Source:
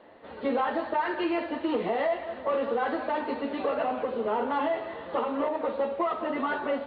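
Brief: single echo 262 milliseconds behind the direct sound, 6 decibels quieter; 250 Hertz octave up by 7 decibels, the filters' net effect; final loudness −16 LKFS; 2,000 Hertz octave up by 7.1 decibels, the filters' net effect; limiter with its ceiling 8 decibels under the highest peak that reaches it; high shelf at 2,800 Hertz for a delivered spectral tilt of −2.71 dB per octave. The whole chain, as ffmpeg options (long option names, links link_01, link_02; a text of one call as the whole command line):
ffmpeg -i in.wav -af "equalizer=frequency=250:width_type=o:gain=8.5,equalizer=frequency=2000:width_type=o:gain=6.5,highshelf=frequency=2800:gain=6.5,alimiter=limit=-21dB:level=0:latency=1,aecho=1:1:262:0.501,volume=12.5dB" out.wav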